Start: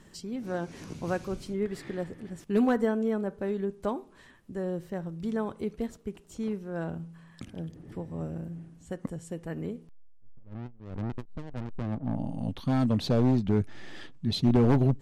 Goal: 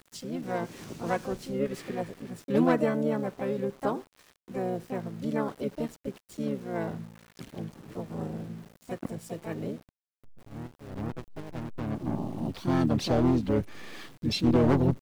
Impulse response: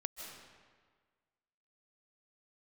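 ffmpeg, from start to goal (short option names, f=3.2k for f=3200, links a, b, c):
-filter_complex "[0:a]lowshelf=f=95:g=-10,asplit=4[a][b][c][d];[b]asetrate=29433,aresample=44100,atempo=1.49831,volume=-8dB[e];[c]asetrate=55563,aresample=44100,atempo=0.793701,volume=-14dB[f];[d]asetrate=58866,aresample=44100,atempo=0.749154,volume=-5dB[g];[a][e][f][g]amix=inputs=4:normalize=0,aeval=exprs='val(0)*gte(abs(val(0)),0.00398)':c=same"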